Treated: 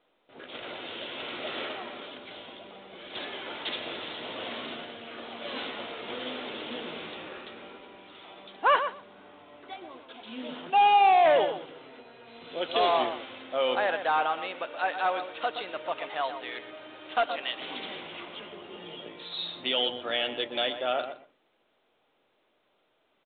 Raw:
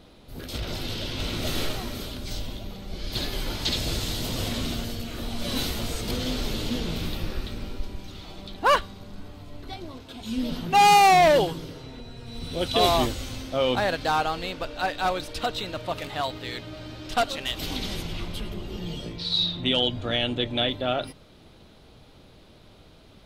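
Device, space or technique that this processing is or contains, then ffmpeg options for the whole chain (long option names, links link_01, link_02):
telephone: -filter_complex "[0:a]agate=range=-15dB:threshold=-45dB:ratio=16:detection=peak,lowshelf=frequency=330:gain=-6,asplit=2[link_01][link_02];[link_02]adelay=123,lowpass=frequency=1800:poles=1,volume=-9dB,asplit=2[link_03][link_04];[link_04]adelay=123,lowpass=frequency=1800:poles=1,volume=0.16[link_05];[link_01][link_03][link_05]amix=inputs=3:normalize=0,asettb=1/sr,asplit=3[link_06][link_07][link_08];[link_06]atrim=end=10.704[link_09];[link_07]atrim=start=10.7:end=11.26,asetpts=PTS-STARTPTS,afade=type=in:duration=0.004:curve=qsin,afade=type=out:start_time=0.556:duration=0.004:curve=qsin,equalizer=frequency=160:width_type=o:width=0.33:gain=-10,equalizer=frequency=315:width_type=o:width=0.33:gain=-7,equalizer=frequency=1250:width_type=o:width=0.33:gain=-10,equalizer=frequency=2000:width_type=o:width=0.33:gain=-12[link_10];[link_08]atrim=start=11.256[link_11];[link_09][link_10]acrossfade=duration=0.004:curve1=hsin:curve2=qsin[link_12];[link_12][link_11]acrossfade=duration=0.004:curve1=qsin:curve2=hsin,highpass=390,lowpass=3200,asoftclip=type=tanh:threshold=-12dB" -ar 8000 -c:a pcm_mulaw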